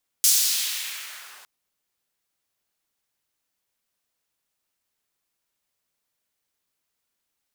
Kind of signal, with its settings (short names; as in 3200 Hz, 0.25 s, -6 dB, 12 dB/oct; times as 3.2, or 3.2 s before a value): swept filtered noise pink, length 1.21 s highpass, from 6600 Hz, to 1000 Hz, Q 1.2, exponential, gain ramp -35.5 dB